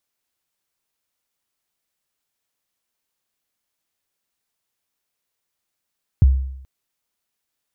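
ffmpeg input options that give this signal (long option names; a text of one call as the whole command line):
ffmpeg -f lavfi -i "aevalsrc='0.501*pow(10,-3*t/0.76)*sin(2*PI*(140*0.022/log(66/140)*(exp(log(66/140)*min(t,0.022)/0.022)-1)+66*max(t-0.022,0)))':duration=0.43:sample_rate=44100" out.wav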